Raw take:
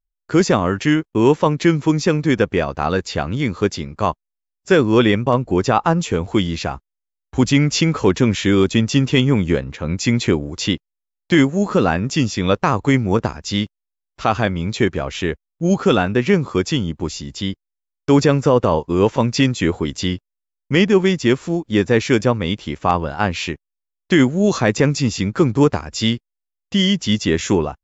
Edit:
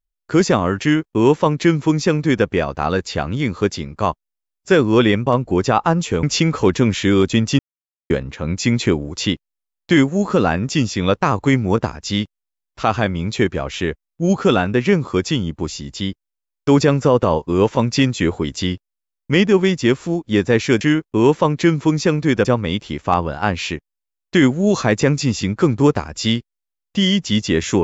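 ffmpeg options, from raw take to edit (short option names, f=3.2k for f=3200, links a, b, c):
-filter_complex "[0:a]asplit=6[a][b][c][d][e][f];[a]atrim=end=6.232[g];[b]atrim=start=7.638:end=9,asetpts=PTS-STARTPTS,afade=t=out:st=1.358:d=0.004:c=hsin[h];[c]atrim=start=9:end=9.51,asetpts=PTS-STARTPTS,volume=0[i];[d]atrim=start=9.51:end=22.222,asetpts=PTS-STARTPTS,afade=t=in:d=0.004:c=hsin[j];[e]atrim=start=0.818:end=2.462[k];[f]atrim=start=22.218[l];[h][i][j]concat=n=3:v=0:a=1[m];[g][m]acrossfade=d=0.004:c1=hsin:c2=hsin[n];[n][k]acrossfade=d=0.004:c1=hsin:c2=hsin[o];[o][l]acrossfade=d=0.004:c1=hsin:c2=hsin"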